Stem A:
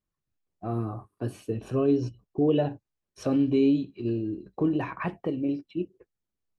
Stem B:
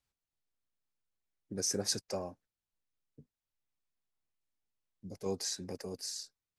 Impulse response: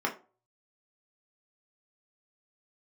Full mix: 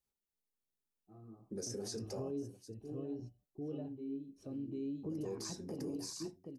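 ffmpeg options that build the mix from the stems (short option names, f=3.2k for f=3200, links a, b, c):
-filter_complex "[0:a]adelay=450,volume=-8.5dB,asplit=3[a][b][c];[b]volume=-21dB[d];[c]volume=-8dB[e];[1:a]volume=-1.5dB,asplit=4[f][g][h][i];[g]volume=-7dB[j];[h]volume=-21.5dB[k];[i]apad=whole_len=310338[l];[a][l]sidechaingate=range=-33dB:threshold=-58dB:ratio=16:detection=peak[m];[2:a]atrim=start_sample=2205[n];[d][j]amix=inputs=2:normalize=0[o];[o][n]afir=irnorm=-1:irlink=0[p];[e][k]amix=inputs=2:normalize=0,aecho=0:1:750:1[q];[m][f][p][q]amix=inputs=4:normalize=0,acrossover=split=8700[r][s];[s]acompressor=threshold=-55dB:ratio=4:attack=1:release=60[t];[r][t]amix=inputs=2:normalize=0,equalizer=f=1.7k:t=o:w=2.9:g=-13.5,alimiter=level_in=9dB:limit=-24dB:level=0:latency=1:release=71,volume=-9dB"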